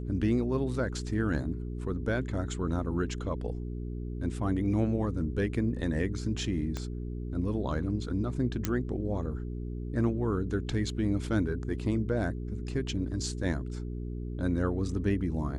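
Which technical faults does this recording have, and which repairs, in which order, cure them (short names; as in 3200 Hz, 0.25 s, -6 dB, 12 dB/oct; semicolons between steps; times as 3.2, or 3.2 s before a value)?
hum 60 Hz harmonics 7 -36 dBFS
6.77 pop -21 dBFS
8.65 pop -13 dBFS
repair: de-click; de-hum 60 Hz, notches 7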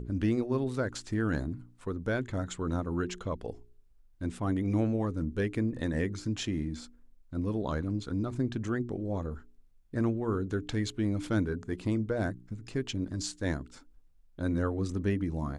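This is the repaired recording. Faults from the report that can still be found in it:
6.77 pop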